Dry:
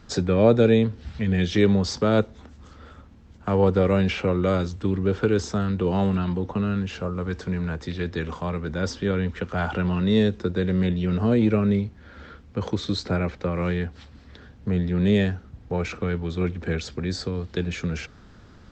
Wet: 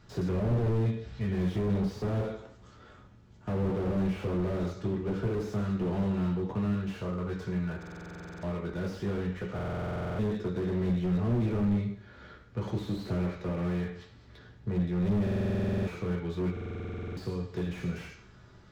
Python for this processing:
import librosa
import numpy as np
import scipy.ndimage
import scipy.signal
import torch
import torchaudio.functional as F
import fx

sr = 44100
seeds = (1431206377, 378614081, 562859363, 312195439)

y = fx.rev_fdn(x, sr, rt60_s=0.64, lf_ratio=0.8, hf_ratio=0.9, size_ms=48.0, drr_db=-1.0)
y = fx.buffer_glitch(y, sr, at_s=(7.78, 9.54, 15.22, 16.52), block=2048, repeats=13)
y = fx.slew_limit(y, sr, full_power_hz=34.0)
y = y * librosa.db_to_amplitude(-8.5)